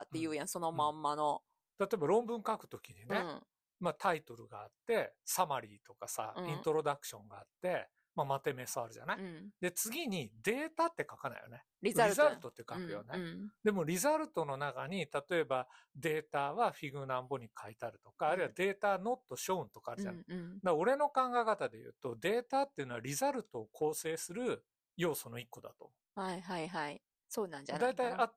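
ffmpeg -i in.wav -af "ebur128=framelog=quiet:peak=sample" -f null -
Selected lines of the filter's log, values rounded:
Integrated loudness:
  I:         -37.3 LUFS
  Threshold: -47.7 LUFS
Loudness range:
  LRA:         4.5 LU
  Threshold: -57.7 LUFS
  LRA low:   -40.0 LUFS
  LRA high:  -35.5 LUFS
Sample peak:
  Peak:      -16.1 dBFS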